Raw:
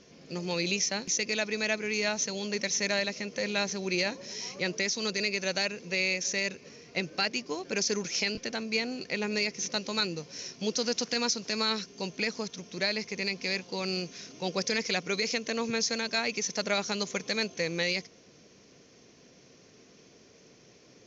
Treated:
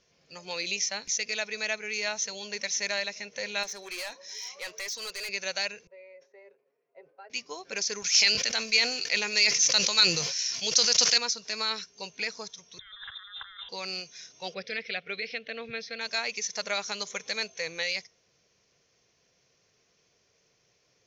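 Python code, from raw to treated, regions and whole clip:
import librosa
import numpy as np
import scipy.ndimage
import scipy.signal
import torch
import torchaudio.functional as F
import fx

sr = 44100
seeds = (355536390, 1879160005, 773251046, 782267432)

y = fx.chain(x, sr, fx.highpass(hz=280.0, slope=12),
    fx.clip_hard(threshold_db=-31.5), at=(3.63, 5.29))
y = fx.chain(y, sr, fx.ladder_bandpass(hz=540.0, resonance_pct=30),
    fx.comb(ms=7.4, depth=0.51),
    fx.sustainer(db_per_s=100.0), at=(5.87, 7.3))
y = fx.chain(y, sr, fx.highpass(hz=110.0, slope=12),
    fx.high_shelf(hz=2200.0, db=12.0),
    fx.sustainer(db_per_s=48.0), at=(8.02, 11.18))
y = fx.chain(y, sr, fx.freq_invert(carrier_hz=3800),
    fx.over_compress(threshold_db=-45.0, ratio=-1.0), at=(12.79, 13.69))
y = fx.chain(y, sr, fx.lowpass(hz=3600.0, slope=24),
    fx.peak_eq(hz=1000.0, db=-13.0, octaves=0.55), at=(14.54, 16.01))
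y = fx.noise_reduce_blind(y, sr, reduce_db=9)
y = fx.peak_eq(y, sr, hz=260.0, db=-14.5, octaves=1.3)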